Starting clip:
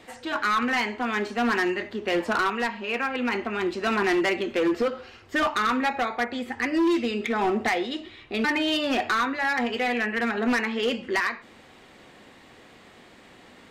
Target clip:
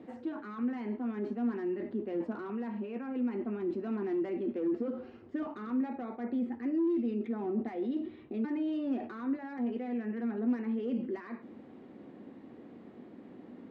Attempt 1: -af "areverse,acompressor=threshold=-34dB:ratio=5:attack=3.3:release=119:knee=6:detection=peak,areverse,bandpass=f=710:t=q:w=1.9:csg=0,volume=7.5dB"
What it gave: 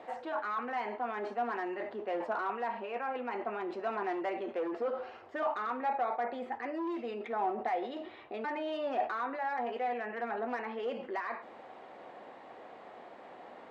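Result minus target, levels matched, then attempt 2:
1000 Hz band +14.0 dB
-af "areverse,acompressor=threshold=-34dB:ratio=5:attack=3.3:release=119:knee=6:detection=peak,areverse,bandpass=f=260:t=q:w=1.9:csg=0,volume=7.5dB"

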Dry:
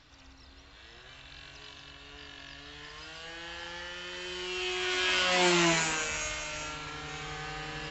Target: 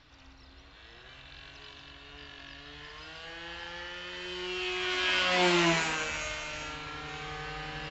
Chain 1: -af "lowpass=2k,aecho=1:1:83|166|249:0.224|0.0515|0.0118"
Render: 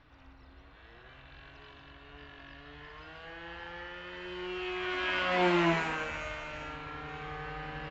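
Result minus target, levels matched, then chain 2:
4000 Hz band -5.5 dB
-af "lowpass=5k,aecho=1:1:83|166|249:0.224|0.0515|0.0118"

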